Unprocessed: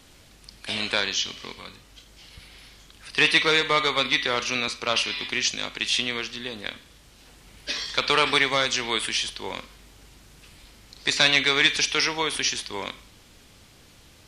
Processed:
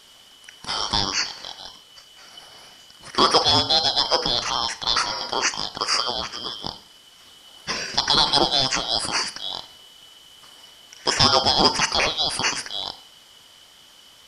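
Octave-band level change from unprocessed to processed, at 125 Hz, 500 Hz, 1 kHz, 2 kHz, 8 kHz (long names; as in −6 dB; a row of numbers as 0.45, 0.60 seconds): +5.5, +1.5, +6.0, −5.0, +2.5 decibels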